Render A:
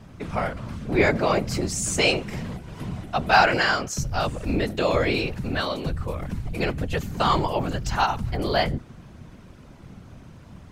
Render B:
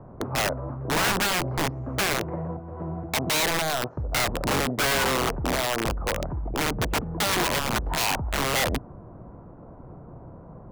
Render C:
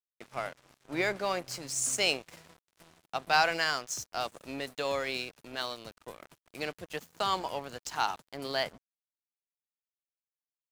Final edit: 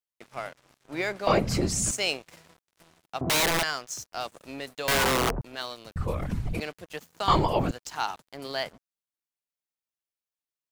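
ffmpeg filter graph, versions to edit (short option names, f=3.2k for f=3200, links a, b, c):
-filter_complex "[0:a]asplit=3[a][b][c];[1:a]asplit=2[d][e];[2:a]asplit=6[f][g][h][i][j][k];[f]atrim=end=1.272[l];[a]atrim=start=1.268:end=1.912[m];[g]atrim=start=1.908:end=3.212[n];[d]atrim=start=3.208:end=3.632[o];[h]atrim=start=3.628:end=4.882[p];[e]atrim=start=4.878:end=5.412[q];[i]atrim=start=5.408:end=5.962[r];[b]atrim=start=5.958:end=6.602[s];[j]atrim=start=6.598:end=7.282[t];[c]atrim=start=7.278:end=7.712[u];[k]atrim=start=7.708[v];[l][m]acrossfade=d=0.004:c1=hsin:c2=hsin[w];[w][n]acrossfade=d=0.004:c1=hsin:c2=hsin[x];[x][o]acrossfade=d=0.004:c1=hsin:c2=hsin[y];[y][p]acrossfade=d=0.004:c1=hsin:c2=hsin[z];[z][q]acrossfade=d=0.004:c1=hsin:c2=hsin[aa];[aa][r]acrossfade=d=0.004:c1=hsin:c2=hsin[ab];[ab][s]acrossfade=d=0.004:c1=hsin:c2=hsin[ac];[ac][t]acrossfade=d=0.004:c1=hsin:c2=hsin[ad];[ad][u]acrossfade=d=0.004:c1=hsin:c2=hsin[ae];[ae][v]acrossfade=d=0.004:c1=hsin:c2=hsin"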